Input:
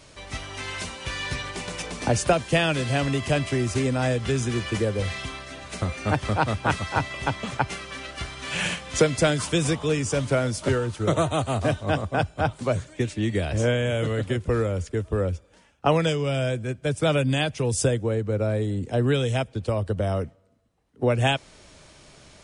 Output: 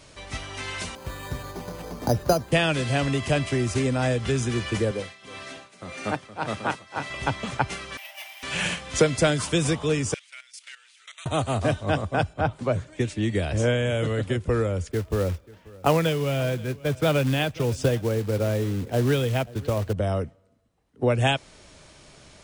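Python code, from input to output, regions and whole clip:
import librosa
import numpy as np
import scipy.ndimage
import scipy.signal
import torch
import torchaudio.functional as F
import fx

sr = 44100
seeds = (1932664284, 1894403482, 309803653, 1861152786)

y = fx.chain(x, sr, fx.lowpass(hz=1200.0, slope=12),
    fx.resample_bad(factor=8, down='none', up='hold'), at=(0.95, 2.52))
y = fx.chain(y, sr, fx.highpass(hz=180.0, slope=12),
    fx.echo_single(ms=314, db=-11.0),
    fx.tremolo(hz=1.8, depth=0.87), at=(4.91, 7.1))
y = fx.chain(y, sr, fx.lower_of_two(delay_ms=0.36),
    fx.cheby_ripple_highpass(hz=590.0, ripple_db=6),
    fx.resample_bad(factor=3, down='none', up='hold'), at=(7.97, 8.43))
y = fx.chain(y, sr, fx.cheby1_highpass(hz=2200.0, order=3),
    fx.high_shelf(hz=4500.0, db=-8.0),
    fx.level_steps(step_db=14), at=(10.14, 11.26))
y = fx.chain(y, sr, fx.highpass(hz=49.0, slope=12),
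    fx.high_shelf(hz=4100.0, db=-10.0), at=(12.33, 12.93))
y = fx.chain(y, sr, fx.lowpass(hz=3900.0, slope=12),
    fx.quant_float(bits=2),
    fx.echo_single(ms=536, db=-21.5), at=(14.91, 19.93))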